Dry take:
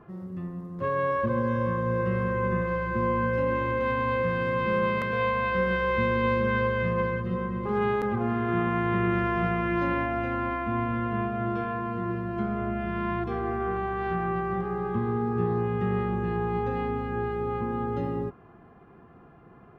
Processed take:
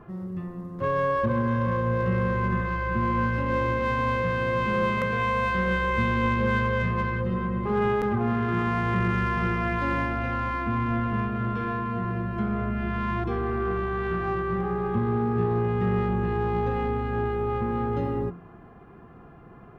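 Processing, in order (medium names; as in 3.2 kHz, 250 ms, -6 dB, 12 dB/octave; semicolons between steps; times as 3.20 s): bass shelf 71 Hz +7 dB; de-hum 86.68 Hz, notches 10; in parallel at -6 dB: saturation -30 dBFS, distortion -9 dB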